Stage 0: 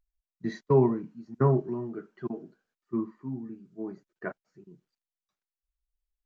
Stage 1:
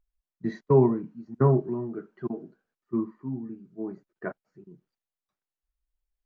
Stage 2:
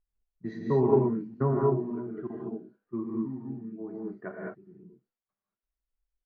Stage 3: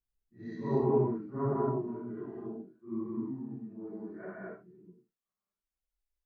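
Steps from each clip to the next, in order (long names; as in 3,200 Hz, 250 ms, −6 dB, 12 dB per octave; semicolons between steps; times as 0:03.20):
high-shelf EQ 2,600 Hz −11 dB; level +2.5 dB
low-pass that shuts in the quiet parts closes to 2,000 Hz, open at −21.5 dBFS; reverb whose tail is shaped and stops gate 240 ms rising, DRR −2 dB; level −6 dB
random phases in long frames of 200 ms; level −4 dB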